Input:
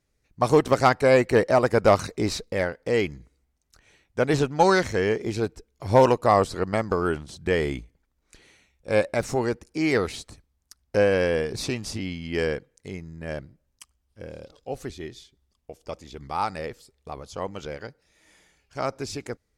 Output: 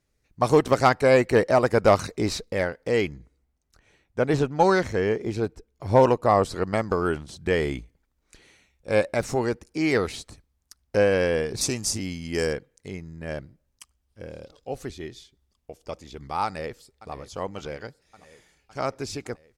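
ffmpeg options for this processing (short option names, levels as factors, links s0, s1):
-filter_complex "[0:a]asettb=1/sr,asplit=3[s0][s1][s2];[s0]atrim=end=3.094[s3];[s1]atrim=start=3.09:end=6.45,asetpts=PTS-STARTPTS,afade=t=in:d=0.004:c=qsin,afade=t=out:st=3.356:d=0.004:c=qsin,highshelf=f=2000:g=-6[s4];[s2]atrim=start=6.446[s5];[s3][s4]acrossfade=d=0.004:c1=hsin:c2=qsin[s6];[s6][s5]acrossfade=d=0.004:c1=qsin:c2=hsin,asettb=1/sr,asplit=3[s7][s8][s9];[s7]atrim=end=11.614[s10];[s8]atrim=start=11.61:end=12.53,asetpts=PTS-STARTPTS,afade=t=in:d=0.004:c=qsin,afade=t=out:st=0.916:d=0.004:c=qsin,highshelf=f=4800:t=q:w=1.5:g=10[s11];[s9]atrim=start=12.526[s12];[s10][s11]acrossfade=d=0.004:c1=hsin:c2=qsin[s13];[s13][s12]acrossfade=d=0.004:c1=qsin:c2=hsin,asplit=2[s14][s15];[s15]afade=t=in:st=16.45:d=0.01,afade=t=out:st=17.12:d=0.01,aecho=0:1:560|1120|1680|2240|2800|3360|3920|4480|5040|5600:0.158489|0.118867|0.0891502|0.0668627|0.050147|0.0376103|0.0282077|0.0211558|0.0158668|0.0119001[s16];[s14][s16]amix=inputs=2:normalize=0"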